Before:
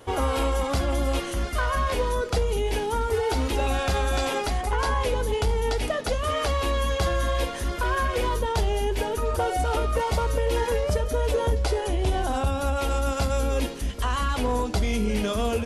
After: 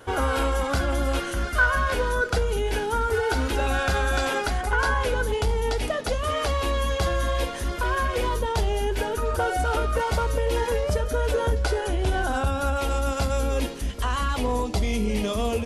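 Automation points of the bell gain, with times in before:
bell 1500 Hz 0.21 oct
+13 dB
from 5.33 s +1 dB
from 8.8 s +9 dB
from 10.23 s +1.5 dB
from 10.97 s +10.5 dB
from 12.77 s +1.5 dB
from 14.36 s -10 dB

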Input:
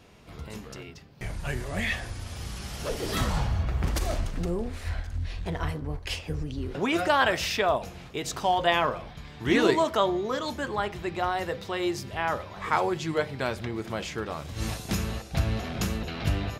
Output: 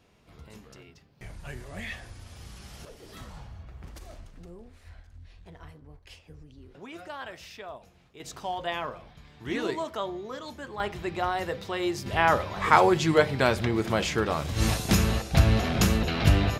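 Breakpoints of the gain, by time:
-8.5 dB
from 2.85 s -17 dB
from 8.2 s -8.5 dB
from 10.8 s -0.5 dB
from 12.06 s +6.5 dB

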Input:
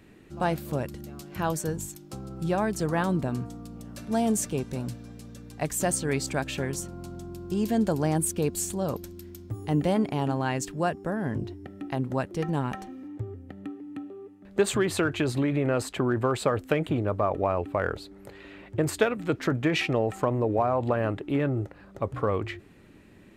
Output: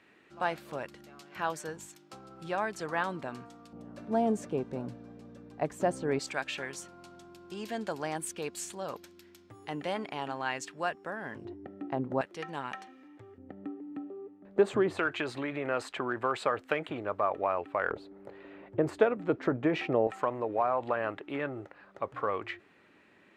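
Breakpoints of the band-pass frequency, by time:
band-pass, Q 0.64
1700 Hz
from 3.73 s 580 Hz
from 6.19 s 2000 Hz
from 11.45 s 580 Hz
from 12.21 s 2200 Hz
from 13.38 s 550 Hz
from 14.99 s 1500 Hz
from 17.91 s 580 Hz
from 20.07 s 1500 Hz

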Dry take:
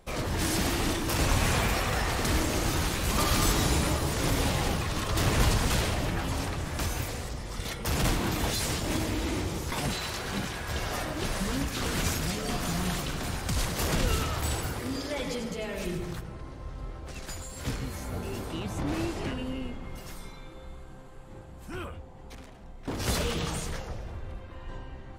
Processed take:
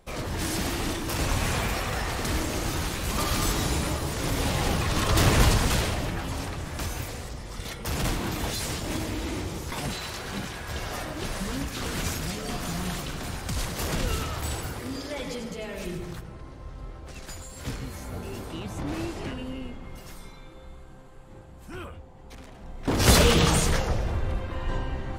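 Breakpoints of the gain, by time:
4.28 s -1 dB
5.1 s +6.5 dB
6.2 s -1 dB
22.24 s -1 dB
23.09 s +11 dB

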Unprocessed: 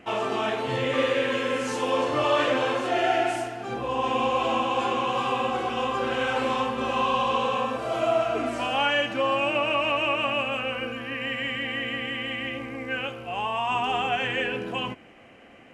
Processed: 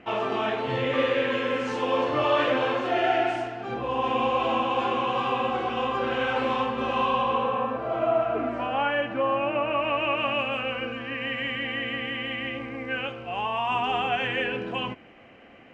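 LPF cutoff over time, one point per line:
7.01 s 3800 Hz
7.55 s 1800 Hz
9.68 s 1800 Hz
10.4 s 4300 Hz

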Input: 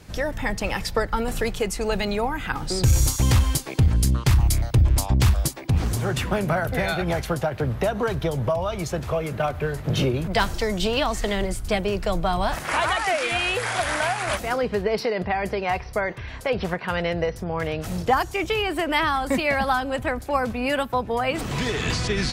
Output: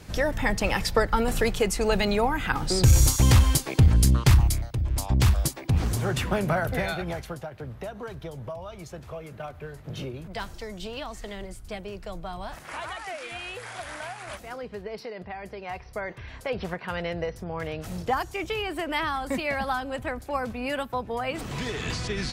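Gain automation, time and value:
4.34 s +1 dB
4.76 s -11 dB
5.18 s -2 dB
6.7 s -2 dB
7.48 s -13 dB
15.53 s -13 dB
16.23 s -6 dB

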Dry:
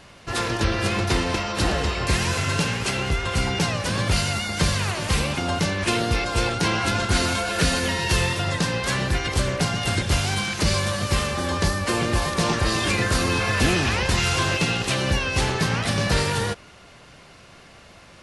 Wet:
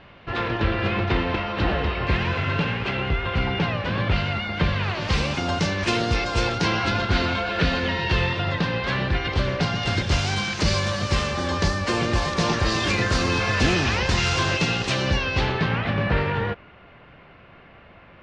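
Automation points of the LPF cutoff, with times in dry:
LPF 24 dB/oct
4.76 s 3300 Hz
5.27 s 6300 Hz
6.46 s 6300 Hz
7.28 s 3900 Hz
9.2 s 3900 Hz
10.22 s 6400 Hz
14.95 s 6400 Hz
15.96 s 2700 Hz

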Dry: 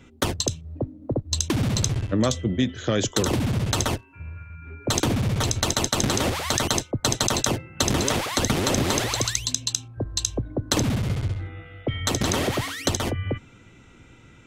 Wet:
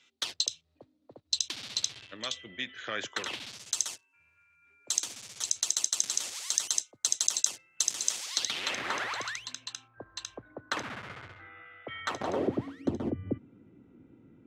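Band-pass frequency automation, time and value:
band-pass, Q 1.7
1.82 s 4200 Hz
3.12 s 1600 Hz
3.63 s 6900 Hz
8.22 s 6900 Hz
8.91 s 1500 Hz
12.07 s 1500 Hz
12.53 s 270 Hz

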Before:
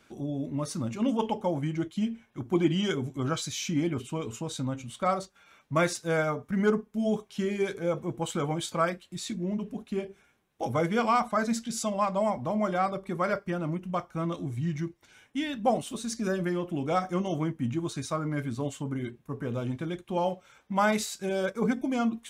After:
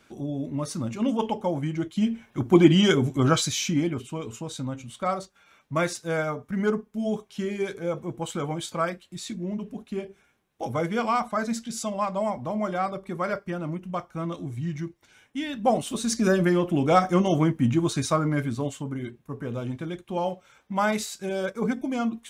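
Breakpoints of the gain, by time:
1.82 s +2 dB
2.28 s +9 dB
3.39 s +9 dB
4.03 s 0 dB
15.4 s 0 dB
16.13 s +8 dB
18.11 s +8 dB
18.91 s +0.5 dB

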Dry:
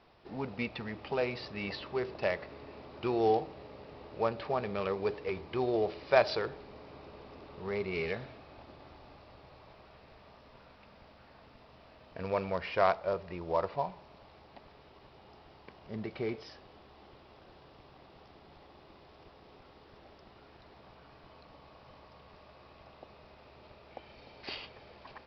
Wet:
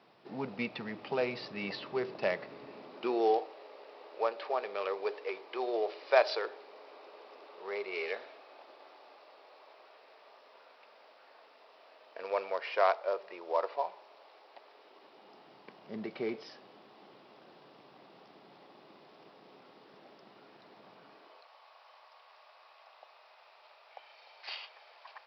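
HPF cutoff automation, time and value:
HPF 24 dB/oct
2.67 s 140 Hz
3.45 s 410 Hz
14.64 s 410 Hz
15.54 s 170 Hz
21.07 s 170 Hz
21.49 s 680 Hz

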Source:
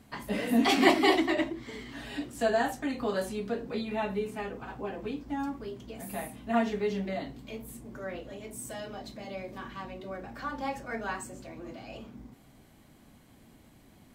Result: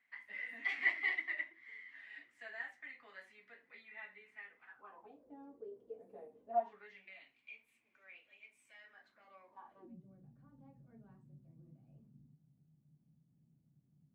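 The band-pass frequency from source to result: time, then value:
band-pass, Q 11
4.65 s 2000 Hz
5.32 s 460 Hz
6.44 s 460 Hz
7 s 2400 Hz
8.66 s 2400 Hz
9.68 s 820 Hz
10.01 s 150 Hz

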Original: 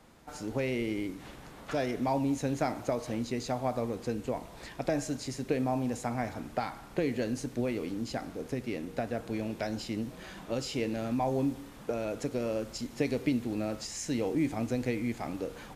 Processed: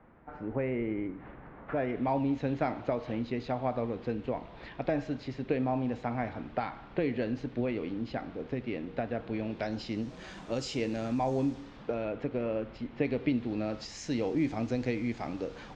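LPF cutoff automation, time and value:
LPF 24 dB/oct
1.71 s 2000 Hz
2.16 s 3600 Hz
9.36 s 3600 Hz
10.3 s 7400 Hz
11.41 s 7400 Hz
12.15 s 3000 Hz
12.94 s 3000 Hz
14.02 s 5700 Hz

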